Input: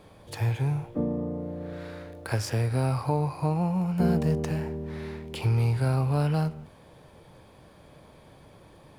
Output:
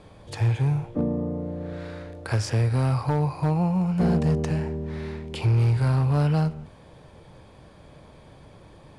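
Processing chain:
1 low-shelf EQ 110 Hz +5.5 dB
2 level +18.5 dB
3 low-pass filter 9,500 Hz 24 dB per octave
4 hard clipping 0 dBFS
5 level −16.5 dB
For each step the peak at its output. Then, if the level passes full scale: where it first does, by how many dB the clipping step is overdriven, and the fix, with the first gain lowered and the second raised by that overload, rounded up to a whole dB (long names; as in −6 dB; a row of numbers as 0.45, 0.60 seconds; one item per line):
−12.0, +6.5, +6.5, 0.0, −16.5 dBFS
step 2, 6.5 dB
step 2 +11.5 dB, step 5 −9.5 dB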